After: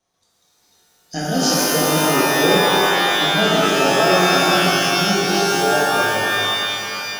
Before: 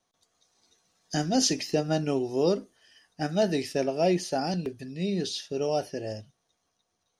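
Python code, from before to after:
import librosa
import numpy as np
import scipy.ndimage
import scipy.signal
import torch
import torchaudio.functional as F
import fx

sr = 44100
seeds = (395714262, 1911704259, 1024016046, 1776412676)

y = fx.rev_shimmer(x, sr, seeds[0], rt60_s=3.2, semitones=12, shimmer_db=-2, drr_db=-7.5)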